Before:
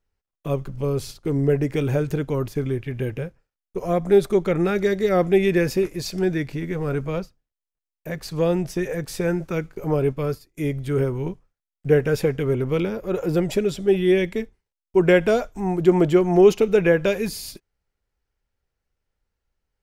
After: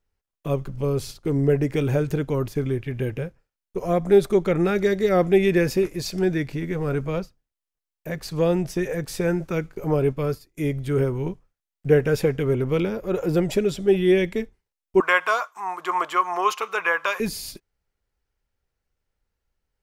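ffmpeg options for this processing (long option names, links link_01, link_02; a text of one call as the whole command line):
ffmpeg -i in.wav -filter_complex "[0:a]asettb=1/sr,asplit=3[link_01][link_02][link_03];[link_01]atrim=end=15.004[link_04];[link_02]atrim=start=15:end=17.2,asetpts=PTS-STARTPTS,afade=type=in:duration=0.004:curve=qsin,afade=type=out:start_time=2.196:duration=0.004:curve=qsin,highpass=frequency=1100:width_type=q:width=9.2[link_05];[link_03]atrim=start=17.196[link_06];[link_04][link_05]acrossfade=duration=0.004:curve1=hsin:curve2=qsin[link_07];[link_07][link_06]acrossfade=duration=0.004:curve1=qsin:curve2=hsin" out.wav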